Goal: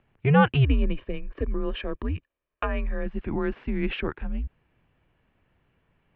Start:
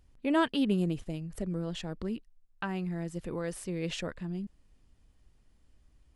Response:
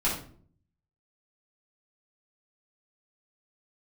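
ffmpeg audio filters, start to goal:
-filter_complex "[0:a]asettb=1/sr,asplit=3[s0][s1][s2];[s0]atrim=end=0.644[s3];[s1]atrim=start=0.64:end=3.06,asetpts=PTS-STARTPTS,afade=t=in:d=0.004:c=qsin,afade=t=out:st=2.416:d=0.004:c=qsin,aecho=1:1:1.6:0.51,atrim=end_sample=106722[s4];[s2]atrim=start=3.056[s5];[s3][s4]acrossfade=d=0.004:c1=hsin:c2=qsin[s6];[s6][s5]acrossfade=d=0.004:c1=qsin:c2=hsin,highpass=f=150:t=q:w=0.5412,highpass=f=150:t=q:w=1.307,lowpass=f=3000:t=q:w=0.5176,lowpass=f=3000:t=q:w=0.7071,lowpass=f=3000:t=q:w=1.932,afreqshift=-140,volume=2.66"

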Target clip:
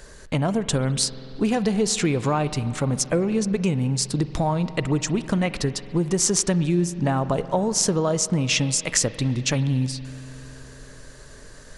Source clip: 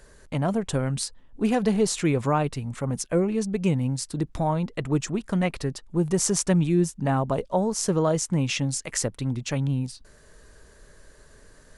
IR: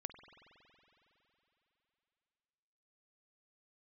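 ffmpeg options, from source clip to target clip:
-filter_complex "[0:a]acompressor=threshold=0.0501:ratio=4,highshelf=f=9400:g=6.5,asplit=2[s0][s1];[1:a]atrim=start_sample=2205,lowpass=6300,highshelf=f=4100:g=12[s2];[s1][s2]afir=irnorm=-1:irlink=0,volume=1.33[s3];[s0][s3]amix=inputs=2:normalize=0,volume=1.19"

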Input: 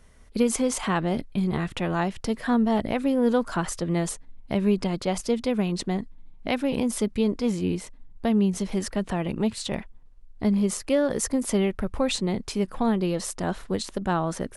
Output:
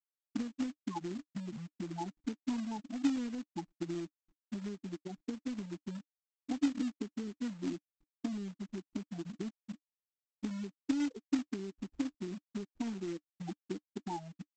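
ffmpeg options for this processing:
-filter_complex "[0:a]lowpass=f=3400:w=0.5412,lowpass=f=3400:w=1.3066,afftfilt=real='re*gte(hypot(re,im),0.316)':imag='im*gte(hypot(re,im),0.316)':win_size=1024:overlap=0.75,adynamicequalizer=threshold=0.00251:dfrequency=1100:dqfactor=3.1:tfrequency=1100:tqfactor=3.1:attack=5:release=100:ratio=0.375:range=2:mode=cutabove:tftype=bell,acompressor=threshold=0.0158:ratio=16,asplit=3[s0][s1][s2];[s0]bandpass=f=300:t=q:w=8,volume=1[s3];[s1]bandpass=f=870:t=q:w=8,volume=0.501[s4];[s2]bandpass=f=2240:t=q:w=8,volume=0.355[s5];[s3][s4][s5]amix=inputs=3:normalize=0,aresample=16000,acrusher=bits=3:mode=log:mix=0:aa=0.000001,aresample=44100,volume=4.73"

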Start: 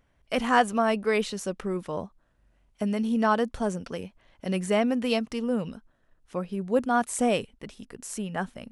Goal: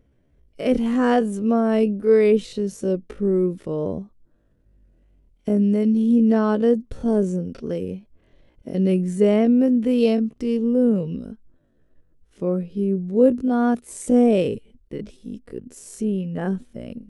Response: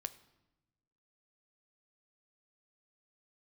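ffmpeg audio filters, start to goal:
-af "atempo=0.51,lowshelf=f=610:t=q:w=1.5:g=11,volume=0.668"

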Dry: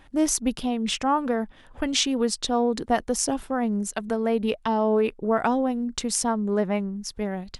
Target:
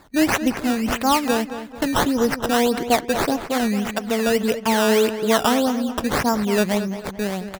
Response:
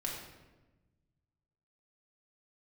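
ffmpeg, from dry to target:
-filter_complex "[0:a]highpass=f=93:p=1,acrusher=samples=14:mix=1:aa=0.000001:lfo=1:lforange=14:lforate=1.7,asplit=2[s0][s1];[s1]adelay=220,lowpass=f=3500:p=1,volume=0.282,asplit=2[s2][s3];[s3]adelay=220,lowpass=f=3500:p=1,volume=0.42,asplit=2[s4][s5];[s5]adelay=220,lowpass=f=3500:p=1,volume=0.42,asplit=2[s6][s7];[s7]adelay=220,lowpass=f=3500:p=1,volume=0.42[s8];[s2][s4][s6][s8]amix=inputs=4:normalize=0[s9];[s0][s9]amix=inputs=2:normalize=0,volume=1.68"

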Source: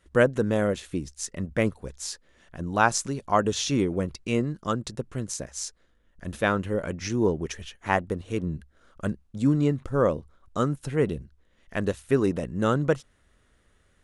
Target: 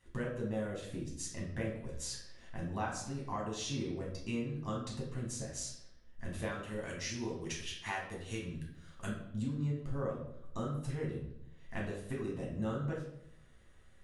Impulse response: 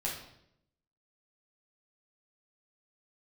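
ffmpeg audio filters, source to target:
-filter_complex "[0:a]asettb=1/sr,asplit=3[s0][s1][s2];[s0]atrim=end=6.514[s3];[s1]atrim=start=6.51:end=9.07,asetpts=PTS-STARTPTS,afade=t=in:d=0.004:c=qsin,afade=t=out:st=2.556:d=0.004:c=qsin,tiltshelf=f=1300:g=-7[s4];[s2]atrim=start=9.066[s5];[s3][s4]acrossfade=d=0.004:c1=hsin:c2=qsin[s6];[s6][s5]acrossfade=d=0.004:c1=qsin:c2=hsin,acompressor=threshold=0.0158:ratio=4[s7];[1:a]atrim=start_sample=2205[s8];[s7][s8]afir=irnorm=-1:irlink=0,volume=0.596"

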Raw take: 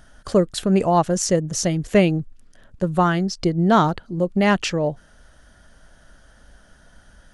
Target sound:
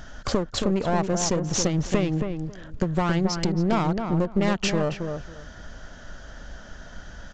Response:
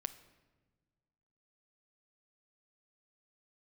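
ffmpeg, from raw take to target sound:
-filter_complex "[0:a]acompressor=threshold=0.0398:ratio=8,aresample=16000,aeval=exprs='clip(val(0),-1,0.0168)':c=same,aresample=44100,asplit=2[s0][s1];[s1]adelay=273,lowpass=f=1500:p=1,volume=0.531,asplit=2[s2][s3];[s3]adelay=273,lowpass=f=1500:p=1,volume=0.19,asplit=2[s4][s5];[s5]adelay=273,lowpass=f=1500:p=1,volume=0.19[s6];[s0][s2][s4][s6]amix=inputs=4:normalize=0,volume=2.66"

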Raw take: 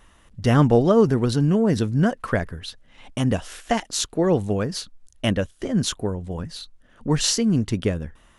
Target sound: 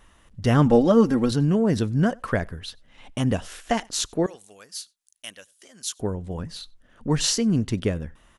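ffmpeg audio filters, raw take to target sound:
-filter_complex "[0:a]asettb=1/sr,asplit=3[s0][s1][s2];[s0]atrim=end=0.664[s3];[s1]atrim=start=0.66:end=1.31,asetpts=PTS-STARTPTS,afade=t=in:d=0.004:c=qsin,afade=t=out:st=0.646:d=0.004:c=qsin,aecho=1:1:3.7:0.71,atrim=end_sample=28665[s4];[s2]atrim=start=1.306[s5];[s3][s4]acrossfade=d=0.004:c1=hsin:c2=qsin[s6];[s6][s5]acrossfade=d=0.004:c1=qsin:c2=hsin,asettb=1/sr,asplit=3[s7][s8][s9];[s7]atrim=end=4.264[s10];[s8]atrim=start=4.26:end=6,asetpts=PTS-STARTPTS,afade=t=in:d=0.004:c=qsin,afade=t=out:st=1.736:d=0.004:c=qsin,aderivative[s11];[s9]atrim=start=5.996[s12];[s10][s11]acrossfade=d=0.004:c1=hsin:c2=qsin[s13];[s13][s12]acrossfade=d=0.004:c1=qsin:c2=hsin,asplit=2[s14][s15];[s15]adelay=93.29,volume=0.0398,highshelf=f=4000:g=-2.1[s16];[s14][s16]amix=inputs=2:normalize=0,volume=0.841"

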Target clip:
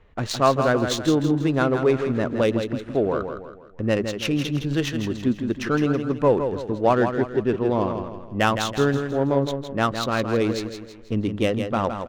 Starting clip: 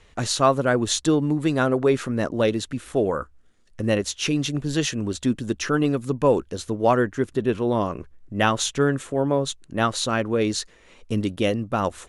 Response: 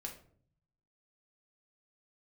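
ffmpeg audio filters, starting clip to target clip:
-af "adynamicsmooth=sensitivity=2:basefreq=1900,aecho=1:1:163|326|489|652|815:0.422|0.173|0.0709|0.0291|0.0119"

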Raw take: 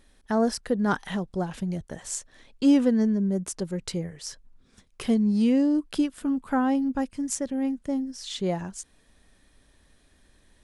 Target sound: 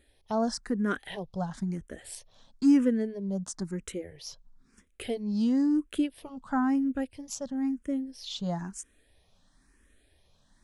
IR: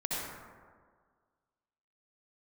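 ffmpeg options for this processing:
-filter_complex "[0:a]asplit=2[s0][s1];[s1]afreqshift=1[s2];[s0][s2]amix=inputs=2:normalize=1,volume=0.841"

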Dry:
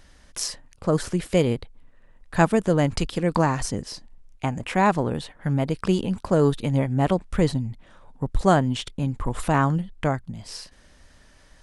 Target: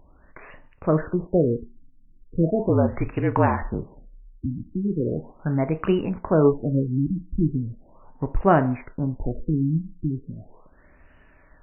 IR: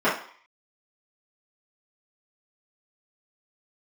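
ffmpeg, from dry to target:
-filter_complex "[0:a]asplit=2[s0][s1];[1:a]atrim=start_sample=2205[s2];[s1][s2]afir=irnorm=-1:irlink=0,volume=0.0501[s3];[s0][s3]amix=inputs=2:normalize=0,asettb=1/sr,asplit=3[s4][s5][s6];[s4]atrim=end=2.694[s7];[s5]atrim=start=2.69:end=4.46,asetpts=PTS-STARTPTS,afade=t=in:d=0.004:c=qsin,afade=t=out:st=1.766:d=0.004:c=qsin,afreqshift=-46[s8];[s6]atrim=start=4.456[s9];[s7][s8]acrossfade=d=0.004:c1=hsin:c2=qsin[s10];[s10][s9]acrossfade=d=0.004:c1=qsin:c2=hsin,afftfilt=real='re*lt(b*sr/1024,320*pow(3000/320,0.5+0.5*sin(2*PI*0.38*pts/sr)))':imag='im*lt(b*sr/1024,320*pow(3000/320,0.5+0.5*sin(2*PI*0.38*pts/sr)))':win_size=1024:overlap=0.75"

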